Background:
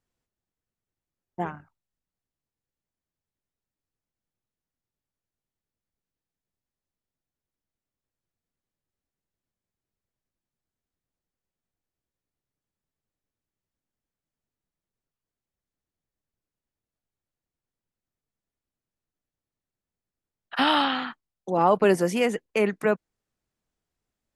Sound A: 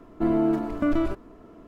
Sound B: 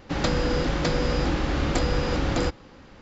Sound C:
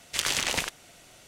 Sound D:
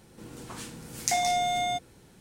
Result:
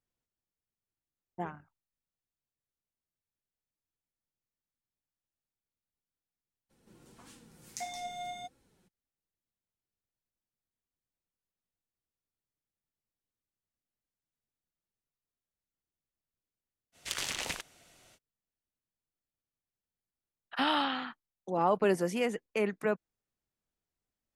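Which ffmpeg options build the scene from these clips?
ffmpeg -i bed.wav -i cue0.wav -i cue1.wav -i cue2.wav -i cue3.wav -filter_complex "[0:a]volume=-7.5dB[link_01];[4:a]flanger=delay=3.6:depth=2.1:regen=48:speed=1.6:shape=sinusoidal,atrim=end=2.2,asetpts=PTS-STARTPTS,volume=-10.5dB,afade=type=in:duration=0.02,afade=type=out:start_time=2.18:duration=0.02,adelay=6690[link_02];[3:a]atrim=end=1.27,asetpts=PTS-STARTPTS,volume=-8.5dB,afade=type=in:duration=0.05,afade=type=out:start_time=1.22:duration=0.05,adelay=16920[link_03];[link_01][link_02][link_03]amix=inputs=3:normalize=0" out.wav

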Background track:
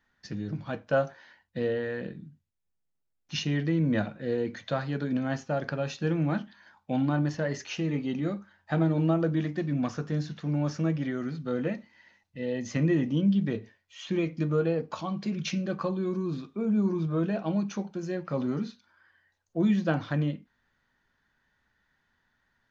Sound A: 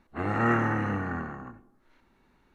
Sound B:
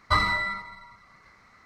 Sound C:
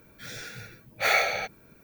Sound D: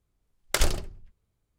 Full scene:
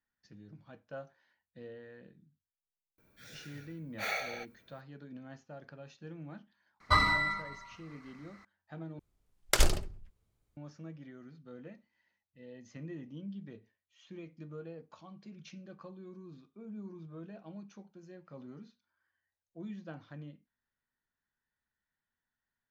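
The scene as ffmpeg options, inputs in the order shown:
ffmpeg -i bed.wav -i cue0.wav -i cue1.wav -i cue2.wav -i cue3.wav -filter_complex "[0:a]volume=-19dB,asplit=2[link_01][link_02];[link_01]atrim=end=8.994[link_03];[4:a]atrim=end=1.58,asetpts=PTS-STARTPTS,volume=-1.5dB[link_04];[link_02]atrim=start=10.566[link_05];[3:a]atrim=end=1.83,asetpts=PTS-STARTPTS,volume=-12.5dB,afade=type=in:duration=0.004:curve=hsin,afade=type=out:start_time=1.826:duration=0.004:curve=hsin,adelay=2980[link_06];[2:a]atrim=end=1.65,asetpts=PTS-STARTPTS,volume=-3dB,afade=type=in:duration=0.004:curve=hsin,afade=type=out:start_time=1.646:duration=0.004:curve=hsin,adelay=6800[link_07];[link_03][link_04]acrossfade=duration=0.004:curve1=hsin:curve2=hsin[link_08];[link_08][link_05]acrossfade=duration=0.004:curve1=hsin:curve2=hsin[link_09];[link_09][link_06][link_07]amix=inputs=3:normalize=0" out.wav

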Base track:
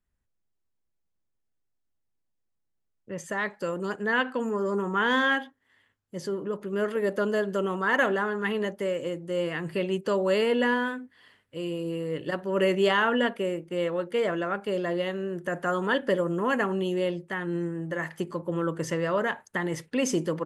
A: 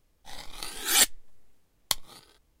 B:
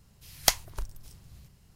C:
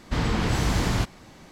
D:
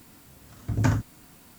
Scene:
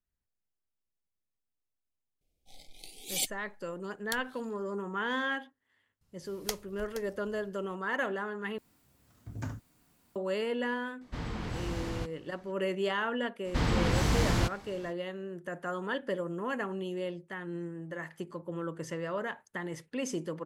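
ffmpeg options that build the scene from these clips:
ffmpeg -i bed.wav -i cue0.wav -i cue1.wav -i cue2.wav -i cue3.wav -filter_complex "[3:a]asplit=2[link_01][link_02];[0:a]volume=-8.5dB[link_03];[1:a]asuperstop=centerf=1300:order=20:qfactor=1[link_04];[2:a]aecho=1:1:472:0.211[link_05];[link_01]highshelf=frequency=4000:gain=-4.5[link_06];[link_03]asplit=2[link_07][link_08];[link_07]atrim=end=8.584[link_09];[4:a]atrim=end=1.58,asetpts=PTS-STARTPTS,volume=-15.5dB[link_10];[link_08]atrim=start=10.156[link_11];[link_04]atrim=end=2.6,asetpts=PTS-STARTPTS,volume=-11dB,afade=type=in:duration=0.004:curve=hsin,afade=type=out:start_time=2.596:duration=0.004:curve=hsin,adelay=2210[link_12];[link_05]atrim=end=1.75,asetpts=PTS-STARTPTS,volume=-13dB,afade=type=in:duration=0.004:curve=hsin,afade=type=out:start_time=1.746:duration=0.004:curve=hsin,adelay=6010[link_13];[link_06]atrim=end=1.51,asetpts=PTS-STARTPTS,volume=-12.5dB,afade=type=in:duration=0.004:curve=hsin,afade=type=out:start_time=1.506:duration=0.004:curve=hsin,adelay=11010[link_14];[link_02]atrim=end=1.51,asetpts=PTS-STARTPTS,volume=-3.5dB,afade=type=in:duration=0.05,afade=type=out:start_time=1.46:duration=0.05,adelay=13430[link_15];[link_09][link_10]acrossfade=duration=0.004:curve1=hsin:curve2=hsin[link_16];[link_16][link_11]acrossfade=duration=0.004:curve1=hsin:curve2=hsin[link_17];[link_17][link_12][link_13][link_14][link_15]amix=inputs=5:normalize=0" out.wav

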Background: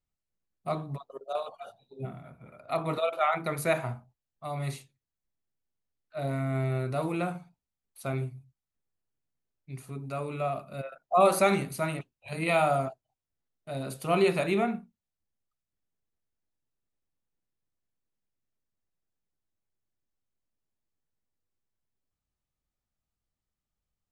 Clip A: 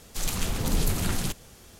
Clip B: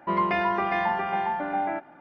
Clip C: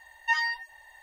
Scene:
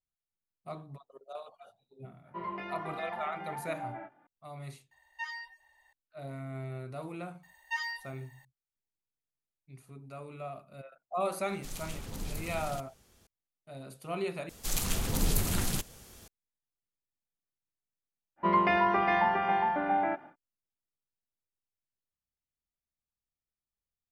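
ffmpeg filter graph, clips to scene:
ffmpeg -i bed.wav -i cue0.wav -i cue1.wav -i cue2.wav -filter_complex "[2:a]asplit=2[link_01][link_02];[3:a]asplit=2[link_03][link_04];[1:a]asplit=2[link_05][link_06];[0:a]volume=-10.5dB[link_07];[link_01]flanger=delay=16.5:depth=4.3:speed=1.3[link_08];[link_04]crystalizer=i=1:c=0[link_09];[link_06]highshelf=frequency=8500:gain=5.5[link_10];[link_07]asplit=2[link_11][link_12];[link_11]atrim=end=14.494[link_13];[link_10]atrim=end=1.79,asetpts=PTS-STARTPTS,volume=-3.5dB[link_14];[link_12]atrim=start=16.276[link_15];[link_08]atrim=end=2,asetpts=PTS-STARTPTS,volume=-11.5dB,afade=type=in:duration=0.004:curve=hsin,afade=type=out:start_time=1.996:duration=0.004:curve=hsin,adelay=2270[link_16];[link_03]atrim=end=1.02,asetpts=PTS-STARTPTS,volume=-13.5dB,afade=type=in:duration=0.004:curve=hsin,afade=type=out:start_time=1.016:duration=0.004:curve=hsin,adelay=4910[link_17];[link_09]atrim=end=1.02,asetpts=PTS-STARTPTS,volume=-9.5dB,afade=type=in:duration=0.004:curve=hsin,afade=type=out:start_time=1.016:duration=0.004:curve=hsin,adelay=7430[link_18];[link_05]atrim=end=1.79,asetpts=PTS-STARTPTS,volume=-13.5dB,afade=type=in:duration=0.004:curve=hsin,afade=type=out:start_time=1.786:duration=0.004:curve=hsin,adelay=11480[link_19];[link_02]atrim=end=2,asetpts=PTS-STARTPTS,volume=-1dB,afade=type=in:duration=0.1,afade=type=out:start_time=1.9:duration=0.1,adelay=18360[link_20];[link_13][link_14]acrossfade=duration=0.004:curve1=hsin:curve2=hsin[link_21];[link_21][link_15]acrossfade=duration=0.004:curve1=hsin:curve2=hsin[link_22];[link_22][link_16][link_17][link_18][link_19][link_20]amix=inputs=6:normalize=0" out.wav

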